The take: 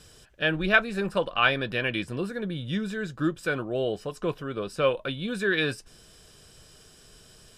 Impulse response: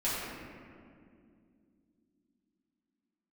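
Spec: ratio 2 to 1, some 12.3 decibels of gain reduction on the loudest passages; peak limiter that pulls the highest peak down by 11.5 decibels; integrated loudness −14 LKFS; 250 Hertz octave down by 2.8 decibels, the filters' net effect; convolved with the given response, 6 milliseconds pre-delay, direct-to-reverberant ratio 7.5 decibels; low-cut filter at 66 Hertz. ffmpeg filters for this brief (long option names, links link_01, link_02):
-filter_complex "[0:a]highpass=66,equalizer=frequency=250:width_type=o:gain=-4,acompressor=threshold=-38dB:ratio=2,alimiter=level_in=4dB:limit=-24dB:level=0:latency=1,volume=-4dB,asplit=2[link_01][link_02];[1:a]atrim=start_sample=2205,adelay=6[link_03];[link_02][link_03]afir=irnorm=-1:irlink=0,volume=-16dB[link_04];[link_01][link_04]amix=inputs=2:normalize=0,volume=24dB"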